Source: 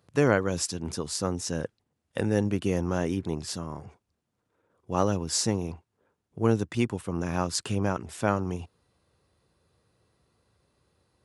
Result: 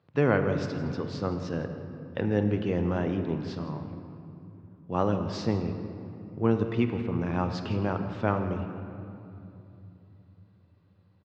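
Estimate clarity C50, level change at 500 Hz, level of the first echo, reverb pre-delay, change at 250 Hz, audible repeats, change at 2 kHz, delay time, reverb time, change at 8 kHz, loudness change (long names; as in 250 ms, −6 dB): 7.0 dB, −0.5 dB, −16.5 dB, 8 ms, +0.5 dB, 1, −1.5 dB, 165 ms, 2.8 s, below −20 dB, −1.0 dB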